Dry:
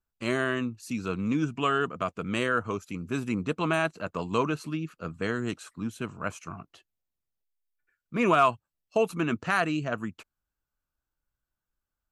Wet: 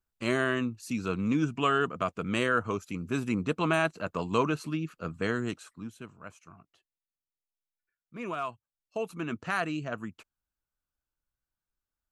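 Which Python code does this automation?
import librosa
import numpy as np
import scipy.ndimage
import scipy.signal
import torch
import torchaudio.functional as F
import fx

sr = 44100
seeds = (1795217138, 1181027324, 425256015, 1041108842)

y = fx.gain(x, sr, db=fx.line((5.37, 0.0), (6.21, -13.0), (8.49, -13.0), (9.51, -4.5)))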